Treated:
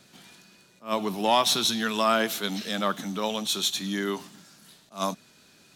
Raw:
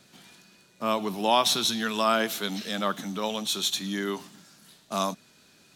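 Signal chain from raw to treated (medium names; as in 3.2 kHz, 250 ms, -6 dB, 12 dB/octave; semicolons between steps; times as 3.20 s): in parallel at -4 dB: hard clipper -18 dBFS, distortion -15 dB; on the sum: attacks held to a fixed rise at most 250 dB/s; trim -3 dB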